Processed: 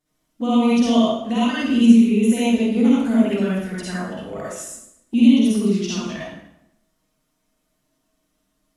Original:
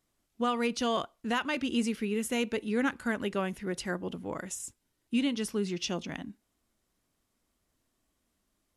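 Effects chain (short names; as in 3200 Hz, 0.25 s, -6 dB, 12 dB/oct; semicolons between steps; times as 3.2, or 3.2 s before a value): small resonant body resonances 230/640 Hz, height 9 dB, ringing for 70 ms; envelope flanger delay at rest 6.6 ms, full sweep at -23 dBFS; reverb RT60 0.80 s, pre-delay 42 ms, DRR -8 dB; gain +1 dB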